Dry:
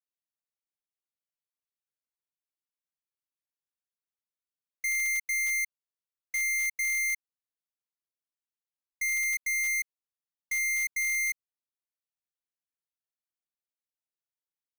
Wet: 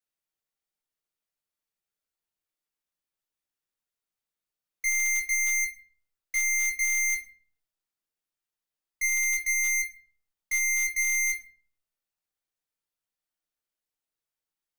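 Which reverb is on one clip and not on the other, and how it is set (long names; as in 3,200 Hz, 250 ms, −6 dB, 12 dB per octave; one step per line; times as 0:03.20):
rectangular room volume 32 cubic metres, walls mixed, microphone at 0.52 metres
level +1.5 dB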